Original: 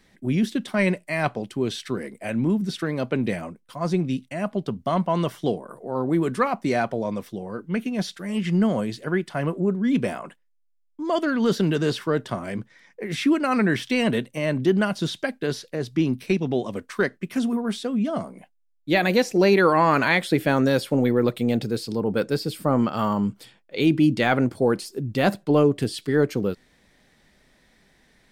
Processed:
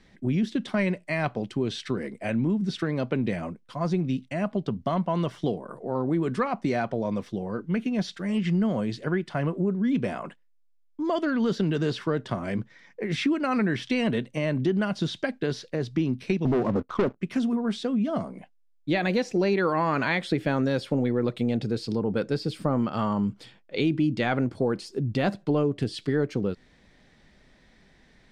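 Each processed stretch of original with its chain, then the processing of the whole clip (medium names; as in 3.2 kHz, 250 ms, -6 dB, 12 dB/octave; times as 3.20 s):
16.45–17.21 s: steep low-pass 1.4 kHz 96 dB/octave + waveshaping leveller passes 3
whole clip: low-pass 6.1 kHz 12 dB/octave; bass shelf 240 Hz +4.5 dB; compression 2.5:1, threshold -24 dBFS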